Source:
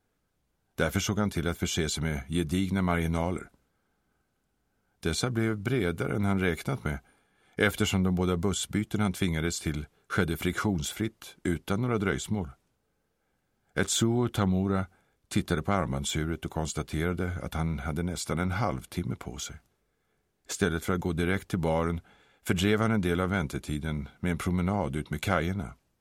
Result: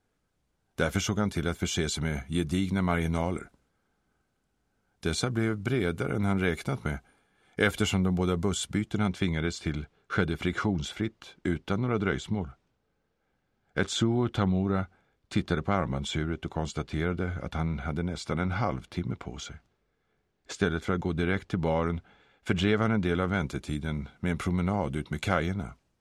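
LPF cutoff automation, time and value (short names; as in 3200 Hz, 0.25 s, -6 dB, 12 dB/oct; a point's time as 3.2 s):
8.62 s 10000 Hz
9.16 s 4900 Hz
23.03 s 4900 Hz
23.6 s 8200 Hz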